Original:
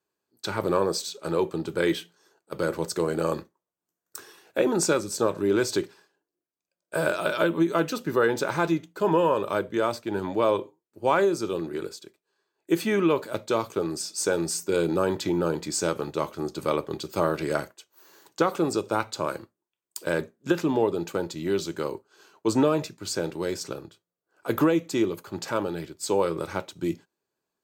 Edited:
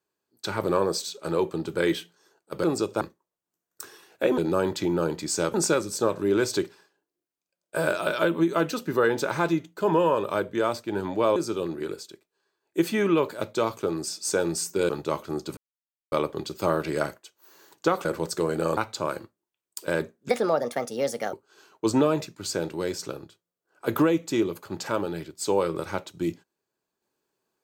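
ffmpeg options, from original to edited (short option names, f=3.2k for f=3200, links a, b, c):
-filter_complex "[0:a]asplit=12[a][b][c][d][e][f][g][h][i][j][k][l];[a]atrim=end=2.642[m];[b]atrim=start=18.588:end=18.962[n];[c]atrim=start=3.358:end=4.732[o];[d]atrim=start=14.818:end=15.982[p];[e]atrim=start=4.728:end=10.552[q];[f]atrim=start=11.288:end=14.822[r];[g]atrim=start=15.978:end=16.66,asetpts=PTS-STARTPTS,afade=t=out:st=0.678:d=0.004:c=hsin,apad=pad_dur=0.55[s];[h]atrim=start=16.66:end=18.592,asetpts=PTS-STARTPTS,afade=t=in:d=0.004:c=hsin[t];[i]atrim=start=2.638:end=3.362[u];[j]atrim=start=18.958:end=20.484[v];[k]atrim=start=20.48:end=21.95,asetpts=PTS-STARTPTS,asetrate=62181,aresample=44100[w];[l]atrim=start=21.946[x];[m][n]acrossfade=d=0.004:c1=hsin:c2=hsin[y];[y][o]acrossfade=d=0.004:c1=hsin:c2=hsin[z];[z][p]acrossfade=d=0.004:c1=hsin:c2=hsin[aa];[aa][q]acrossfade=d=0.004:c1=hsin:c2=hsin[ab];[ab][r]acrossfade=d=0.004:c1=hsin:c2=hsin[ac];[s][t]concat=n=2:v=0:a=1[ad];[ac][ad]acrossfade=d=0.004:c1=hsin:c2=hsin[ae];[ae][u]acrossfade=d=0.004:c1=hsin:c2=hsin[af];[af][v]acrossfade=d=0.004:c1=hsin:c2=hsin[ag];[ag][w]acrossfade=d=0.004:c1=hsin:c2=hsin[ah];[ah][x]acrossfade=d=0.004:c1=hsin:c2=hsin"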